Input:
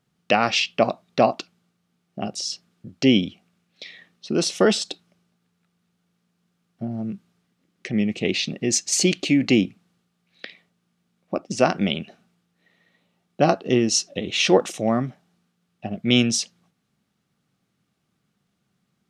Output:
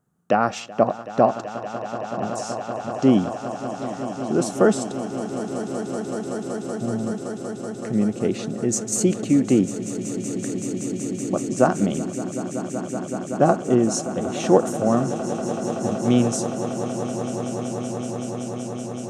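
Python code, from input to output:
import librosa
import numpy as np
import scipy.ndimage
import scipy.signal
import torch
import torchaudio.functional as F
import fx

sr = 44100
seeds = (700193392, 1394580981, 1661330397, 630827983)

y = fx.band_shelf(x, sr, hz=3300.0, db=-16.0, octaves=1.7)
y = fx.echo_swell(y, sr, ms=189, loudest=8, wet_db=-15)
y = y * librosa.db_to_amplitude(1.0)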